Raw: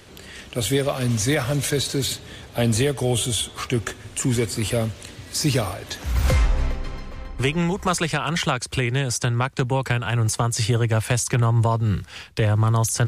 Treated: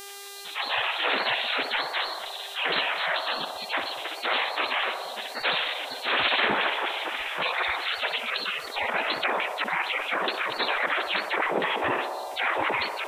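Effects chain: pitch shift -7.5 st; LPC vocoder at 8 kHz whisper; spectral gate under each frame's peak -30 dB weak; AGC gain up to 14 dB; buzz 400 Hz, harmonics 36, -62 dBFS -2 dB/oct; on a send: narrowing echo 61 ms, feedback 83%, band-pass 690 Hz, level -11 dB; on the sum: fast leveller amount 50%

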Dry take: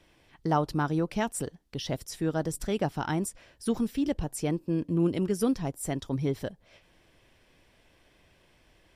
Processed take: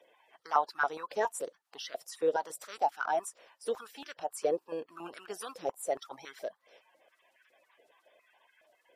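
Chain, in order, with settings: bin magnitudes rounded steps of 30 dB; stepped high-pass 7.2 Hz 500–1500 Hz; gain -5 dB

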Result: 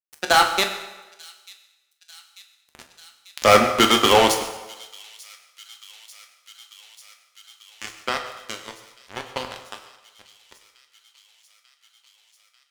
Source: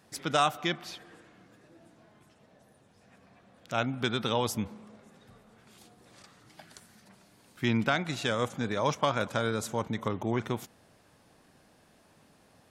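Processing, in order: Doppler pass-by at 2.74, 39 m/s, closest 6.3 m; Bessel high-pass 340 Hz, order 4; fuzz box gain 45 dB, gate -54 dBFS; thin delay 0.892 s, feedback 78%, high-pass 3400 Hz, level -19 dB; on a send at -3.5 dB: reverb RT60 1.2 s, pre-delay 6 ms; on the sum: gain +5.5 dB

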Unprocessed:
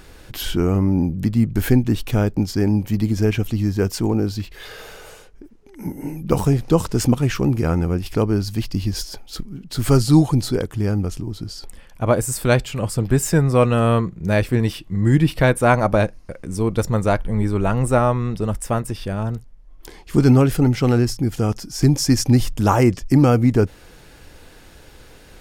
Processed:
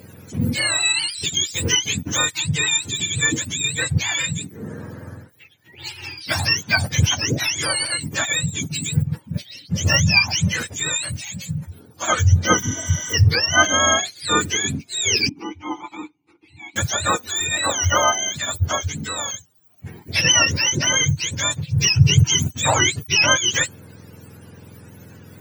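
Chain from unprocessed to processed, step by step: spectrum mirrored in octaves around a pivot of 870 Hz; 12.65–13.11 spectral repair 700–7400 Hz before; 15.29–16.76 vowel filter u; gain +2 dB

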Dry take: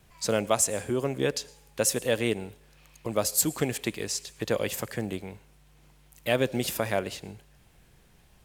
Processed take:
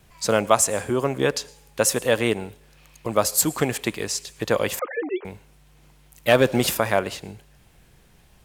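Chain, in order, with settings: 4.79–5.25 sine-wave speech; dynamic EQ 1100 Hz, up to +7 dB, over -44 dBFS, Q 1.1; 6.28–6.75 sample leveller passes 1; gain +4 dB

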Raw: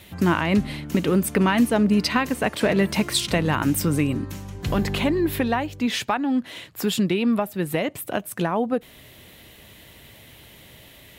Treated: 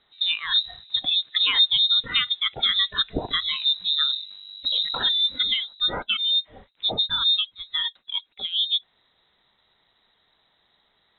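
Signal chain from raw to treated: spectral noise reduction 18 dB; inverted band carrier 3900 Hz

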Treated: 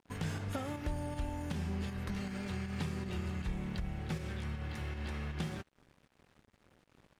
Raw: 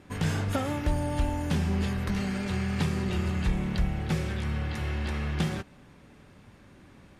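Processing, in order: in parallel at -0.5 dB: pump 158 bpm, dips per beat 1, -18 dB, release 0.119 s; on the sum: crossover distortion -46 dBFS; compressor 1.5:1, threshold -35 dBFS, peak gain reduction 7 dB; gain -9 dB

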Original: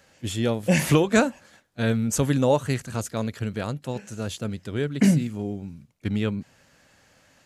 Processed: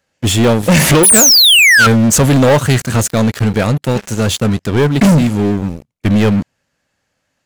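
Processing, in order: painted sound fall, 1.03–1.87, 1300–11000 Hz -16 dBFS; sample leveller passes 5

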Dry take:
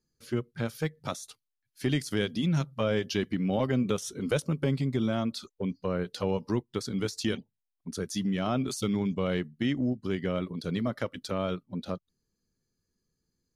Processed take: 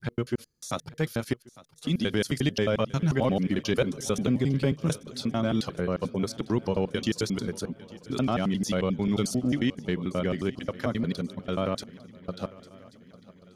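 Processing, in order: slices in reverse order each 89 ms, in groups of 7; swung echo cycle 1.135 s, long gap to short 3:1, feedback 46%, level -20 dB; gain +2.5 dB

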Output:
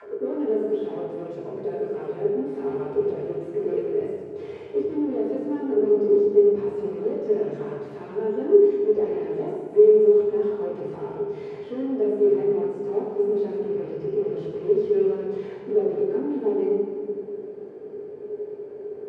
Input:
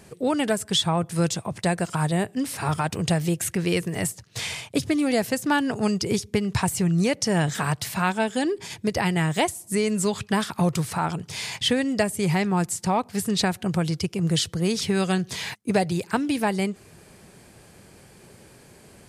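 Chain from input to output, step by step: rattling part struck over -26 dBFS, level -21 dBFS; low shelf 300 Hz +11 dB; overdrive pedal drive 33 dB, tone 2900 Hz, clips at -3.5 dBFS; auto-wah 410–2100 Hz, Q 16, down, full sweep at -25.5 dBFS; reverb RT60 1.9 s, pre-delay 5 ms, DRR -7.5 dB; gain -5.5 dB

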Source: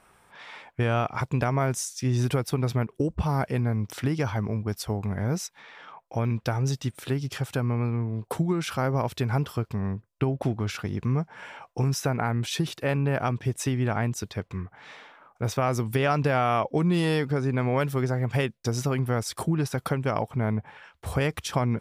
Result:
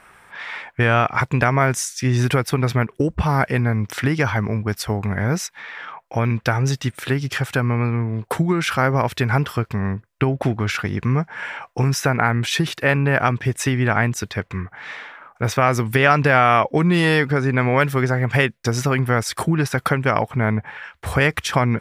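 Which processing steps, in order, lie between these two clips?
bell 1800 Hz +9 dB 1.2 oct; gain +6 dB

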